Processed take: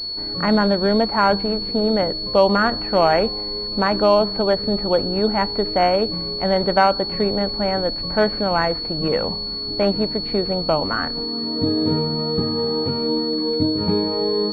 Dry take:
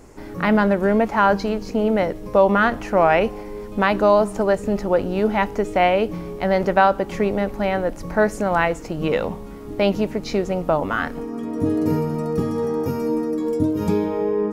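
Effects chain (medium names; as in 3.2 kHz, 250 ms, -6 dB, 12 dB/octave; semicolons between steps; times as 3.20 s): class-D stage that switches slowly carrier 4.4 kHz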